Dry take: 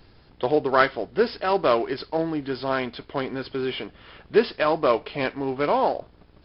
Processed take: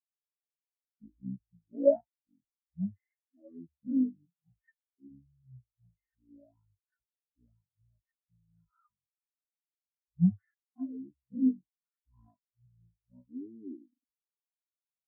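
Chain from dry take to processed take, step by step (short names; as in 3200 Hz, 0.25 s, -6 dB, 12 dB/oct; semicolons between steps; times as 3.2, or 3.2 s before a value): fifteen-band EQ 100 Hz +10 dB, 400 Hz -8 dB, 1000 Hz -5 dB, 4000 Hz +9 dB; speed mistake 78 rpm record played at 33 rpm; spectral expander 4:1; gain -6 dB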